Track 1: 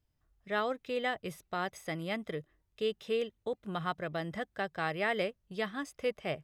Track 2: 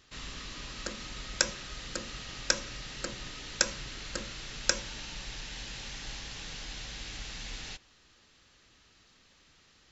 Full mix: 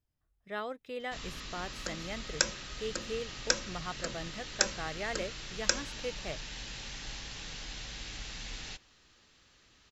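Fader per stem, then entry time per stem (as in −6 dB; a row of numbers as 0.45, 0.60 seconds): −5.5, −1.0 decibels; 0.00, 1.00 seconds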